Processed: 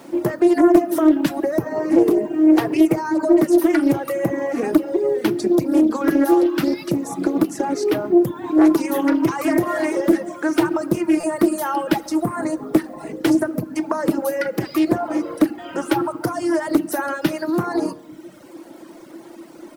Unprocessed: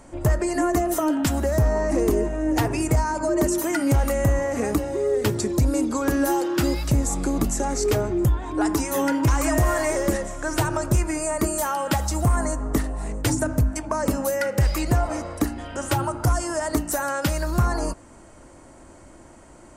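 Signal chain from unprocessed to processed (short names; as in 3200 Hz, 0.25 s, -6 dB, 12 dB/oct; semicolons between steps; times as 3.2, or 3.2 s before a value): in parallel at +1.5 dB: compressor 6:1, threshold -28 dBFS, peak gain reduction 11.5 dB; on the sum: HPF 170 Hz 24 dB/oct; bell 7400 Hz -13 dB 0.58 oct; echo 0.139 s -21 dB; bit-crush 8-bit; reverb RT60 1.3 s, pre-delay 6 ms, DRR 7 dB; reverb removal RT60 1.1 s; bell 330 Hz +10 dB 0.41 oct; stuck buffer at 11.2, samples 256, times 5; Doppler distortion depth 0.27 ms; gain -1.5 dB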